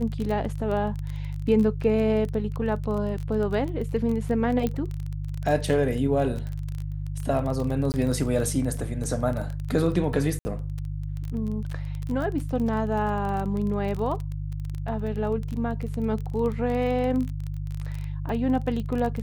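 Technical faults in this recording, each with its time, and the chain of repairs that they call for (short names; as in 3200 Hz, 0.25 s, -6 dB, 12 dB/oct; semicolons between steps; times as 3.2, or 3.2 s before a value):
crackle 21/s -29 dBFS
hum 50 Hz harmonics 3 -31 dBFS
4.67 pop -14 dBFS
7.92–7.94 gap 19 ms
10.39–10.45 gap 60 ms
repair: de-click; de-hum 50 Hz, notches 3; interpolate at 7.92, 19 ms; interpolate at 10.39, 60 ms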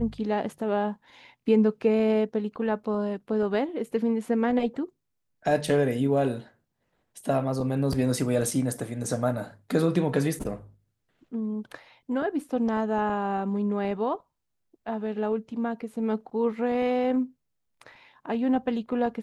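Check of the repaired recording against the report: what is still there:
none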